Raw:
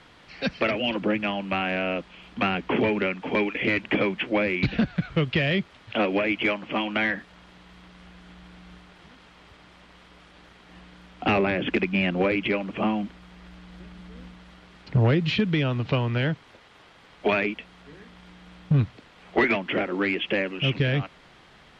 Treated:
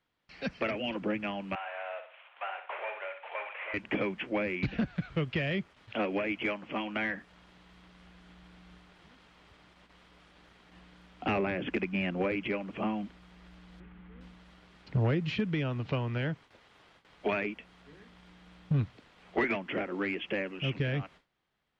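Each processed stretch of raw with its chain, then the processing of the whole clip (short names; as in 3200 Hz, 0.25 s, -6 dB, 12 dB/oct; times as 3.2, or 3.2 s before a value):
1.55–3.74 CVSD 16 kbps + elliptic high-pass 590 Hz, stop band 70 dB + flutter echo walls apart 10.3 m, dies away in 0.43 s
13.8–14.21 LPF 2700 Hz 24 dB/oct + notch 620 Hz, Q 5.2
whole clip: gate with hold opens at -40 dBFS; dynamic EQ 3900 Hz, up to -6 dB, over -46 dBFS, Q 2; gain -7.5 dB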